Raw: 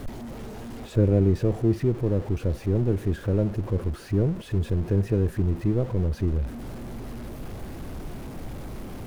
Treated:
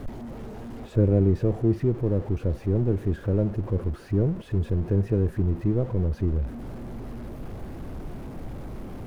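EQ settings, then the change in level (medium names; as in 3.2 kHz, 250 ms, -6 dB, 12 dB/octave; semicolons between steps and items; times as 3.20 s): treble shelf 2.3 kHz -9 dB; 0.0 dB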